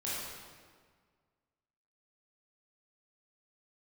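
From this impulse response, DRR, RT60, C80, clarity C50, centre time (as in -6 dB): -9.0 dB, 1.7 s, 0.0 dB, -3.5 dB, 0.119 s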